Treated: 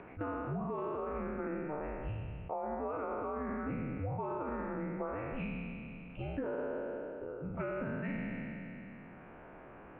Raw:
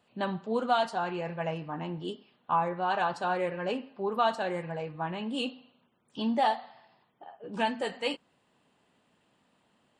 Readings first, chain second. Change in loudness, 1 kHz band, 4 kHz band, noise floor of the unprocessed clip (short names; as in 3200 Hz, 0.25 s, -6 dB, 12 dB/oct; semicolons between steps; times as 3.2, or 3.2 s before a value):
-8.0 dB, -12.0 dB, under -20 dB, -71 dBFS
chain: spectral trails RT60 1.48 s; dynamic EQ 1400 Hz, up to +5 dB, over -43 dBFS, Q 4.6; mistuned SSB -300 Hz 370–2400 Hz; upward compressor, threshold -37 dBFS; limiter -22 dBFS, peak gain reduction 11 dB; compressor, threshold -35 dBFS, peak gain reduction 8.5 dB; air absorption 240 m; attack slew limiter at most 260 dB/s; gain +1 dB